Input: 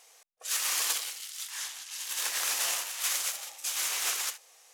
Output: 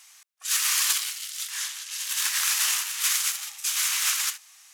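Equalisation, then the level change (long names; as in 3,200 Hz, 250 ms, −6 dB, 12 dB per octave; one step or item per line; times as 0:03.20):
high-pass filter 1,100 Hz 24 dB per octave
+6.0 dB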